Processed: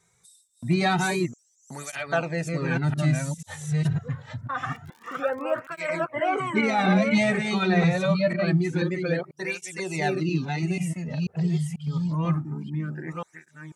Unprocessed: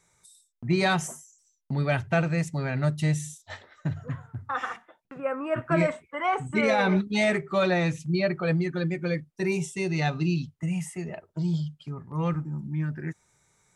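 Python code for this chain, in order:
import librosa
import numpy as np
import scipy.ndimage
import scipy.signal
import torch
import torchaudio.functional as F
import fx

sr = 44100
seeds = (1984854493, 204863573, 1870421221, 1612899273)

y = fx.reverse_delay(x, sr, ms=490, wet_db=-3.0)
y = fx.dmg_crackle(y, sr, seeds[0], per_s=63.0, level_db=-38.0, at=(4.71, 6.01), fade=0.02)
y = fx.flanger_cancel(y, sr, hz=0.26, depth_ms=3.6)
y = y * librosa.db_to_amplitude(3.0)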